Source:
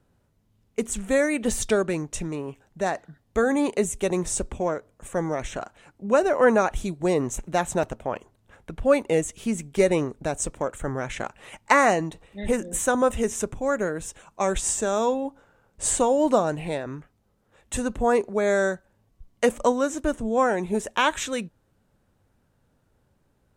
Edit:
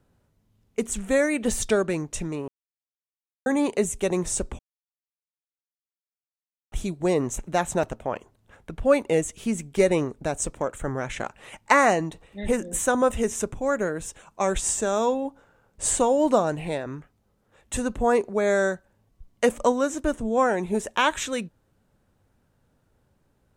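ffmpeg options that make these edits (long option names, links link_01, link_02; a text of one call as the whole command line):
ffmpeg -i in.wav -filter_complex "[0:a]asplit=5[link_01][link_02][link_03][link_04][link_05];[link_01]atrim=end=2.48,asetpts=PTS-STARTPTS,afade=type=out:start_time=2.476:duration=0.004:curve=hsin[link_06];[link_02]atrim=start=2.48:end=3.46,asetpts=PTS-STARTPTS,volume=0[link_07];[link_03]atrim=start=3.46:end=4.59,asetpts=PTS-STARTPTS,afade=type=in:duration=0.004:curve=hsin,afade=type=out:start_time=1.126:duration=0.004:curve=hsin[link_08];[link_04]atrim=start=4.59:end=6.72,asetpts=PTS-STARTPTS,volume=0[link_09];[link_05]atrim=start=6.72,asetpts=PTS-STARTPTS,afade=type=in:duration=0.004:curve=hsin[link_10];[link_06][link_07][link_08][link_09][link_10]concat=n=5:v=0:a=1" out.wav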